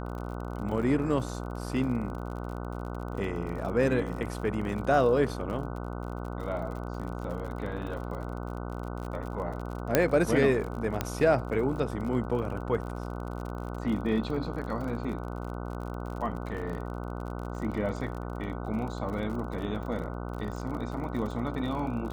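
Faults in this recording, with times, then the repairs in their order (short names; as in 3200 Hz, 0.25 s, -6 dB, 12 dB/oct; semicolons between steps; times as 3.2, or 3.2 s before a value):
buzz 60 Hz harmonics 25 -36 dBFS
crackle 47/s -37 dBFS
9.95 pop -6 dBFS
11.01 pop -13 dBFS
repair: de-click; de-hum 60 Hz, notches 25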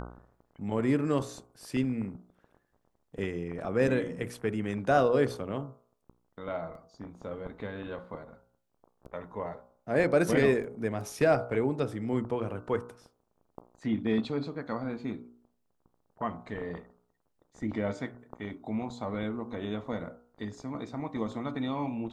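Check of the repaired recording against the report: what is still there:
11.01 pop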